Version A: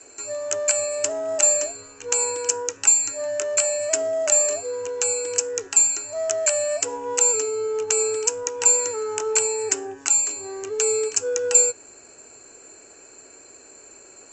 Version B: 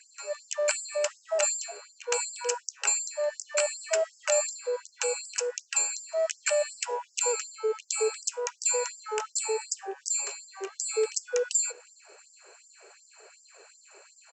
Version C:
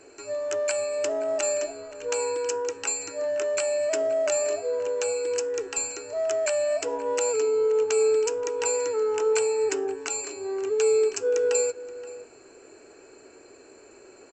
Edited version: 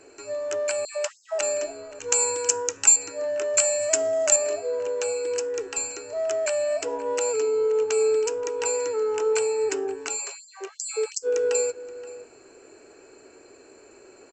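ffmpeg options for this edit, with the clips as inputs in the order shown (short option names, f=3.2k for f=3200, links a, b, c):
-filter_complex "[1:a]asplit=2[a][b];[0:a]asplit=2[c][d];[2:a]asplit=5[e][f][g][h][i];[e]atrim=end=0.852[j];[a]atrim=start=0.848:end=1.412[k];[f]atrim=start=1.408:end=1.992[l];[c]atrim=start=1.988:end=2.962[m];[g]atrim=start=2.958:end=3.542[n];[d]atrim=start=3.538:end=4.362[o];[h]atrim=start=4.358:end=10.2[p];[b]atrim=start=10.14:end=11.28[q];[i]atrim=start=11.22[r];[j][k]acrossfade=d=0.004:c1=hsin:c2=hsin[s];[s][l]acrossfade=d=0.004:c1=hsin:c2=hsin[t];[t][m]acrossfade=d=0.004:c1=hsin:c2=hsin[u];[u][n]acrossfade=d=0.004:c1=hsin:c2=hsin[v];[v][o]acrossfade=d=0.004:c1=hsin:c2=hsin[w];[w][p]acrossfade=d=0.004:c1=hsin:c2=hsin[x];[x][q]acrossfade=d=0.06:c1=tri:c2=tri[y];[y][r]acrossfade=d=0.06:c1=tri:c2=tri"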